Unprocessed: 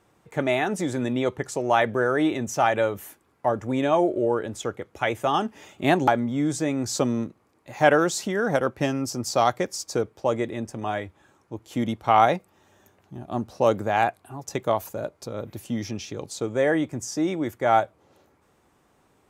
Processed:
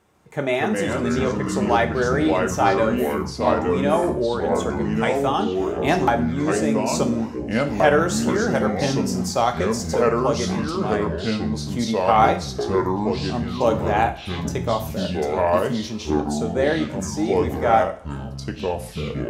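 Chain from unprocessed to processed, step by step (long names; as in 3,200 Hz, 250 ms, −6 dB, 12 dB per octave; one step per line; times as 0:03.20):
delay with pitch and tempo change per echo 145 ms, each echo −4 semitones, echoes 3
coupled-rooms reverb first 0.44 s, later 1.7 s, from −24 dB, DRR 5.5 dB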